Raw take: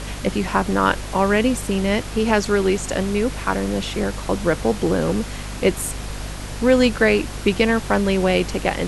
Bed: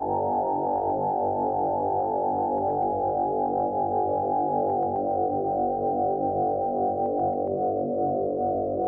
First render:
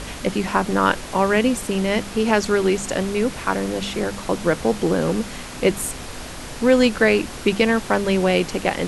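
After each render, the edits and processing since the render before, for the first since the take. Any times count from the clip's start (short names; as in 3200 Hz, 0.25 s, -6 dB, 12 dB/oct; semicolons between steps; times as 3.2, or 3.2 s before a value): de-hum 50 Hz, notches 4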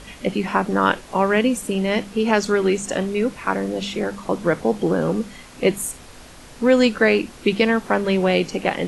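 noise print and reduce 9 dB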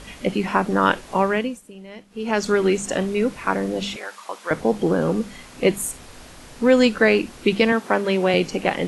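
1.19–2.51 dip -18.5 dB, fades 0.42 s; 3.96–4.51 HPF 1000 Hz; 7.72–8.34 HPF 200 Hz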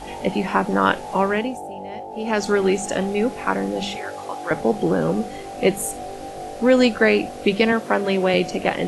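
add bed -8.5 dB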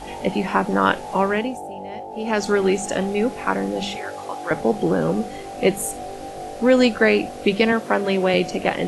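nothing audible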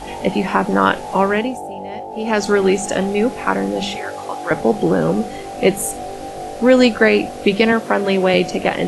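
gain +4 dB; limiter -1 dBFS, peak gain reduction 2 dB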